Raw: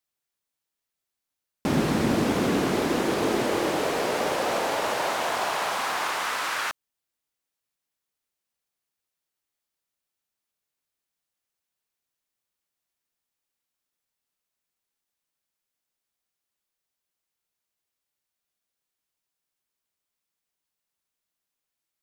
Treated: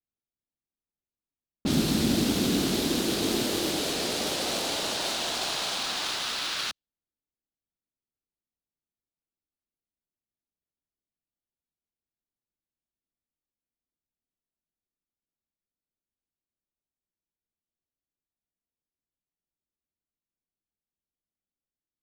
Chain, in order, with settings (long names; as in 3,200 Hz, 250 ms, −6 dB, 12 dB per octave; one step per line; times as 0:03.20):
low-pass that shuts in the quiet parts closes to 780 Hz, open at −21 dBFS
graphic EQ with 10 bands 125 Hz −5 dB, 500 Hz −8 dB, 1,000 Hz −11 dB, 2,000 Hz −10 dB, 4,000 Hz +10 dB, 16,000 Hz +9 dB
in parallel at −8.5 dB: sample-rate reduction 6,800 Hz, jitter 0%